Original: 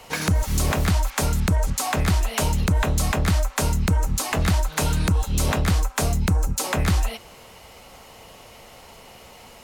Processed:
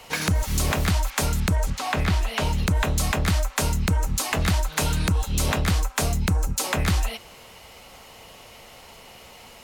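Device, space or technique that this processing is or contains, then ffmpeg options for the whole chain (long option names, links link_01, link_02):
presence and air boost: -filter_complex "[0:a]asettb=1/sr,asplit=3[link_01][link_02][link_03];[link_01]atrim=end=1.684[link_04];[link_02]atrim=start=1.68:end=2.66,asetpts=PTS-STARTPTS,afade=type=in:duration=0.004:curve=qsin,afade=type=out:start_time=0.976:duration=0.004:curve=qsin,acrossover=split=4700[link_05][link_06];[link_06]acompressor=threshold=-41dB:ratio=4:attack=1:release=60[link_07];[link_05][link_07]amix=inputs=2:normalize=0[link_08];[link_03]atrim=start=2.656[link_09];[link_04][link_08]acrossfade=duration=0.004:curve1=hsin:curve2=qsin[link_10];[link_10][link_09]acrossfade=duration=0.004:curve1=qsin:curve2=hsin,equalizer=frequency=3000:width_type=o:width=2:gain=3.5,highshelf=frequency=11000:gain=3,volume=-2dB"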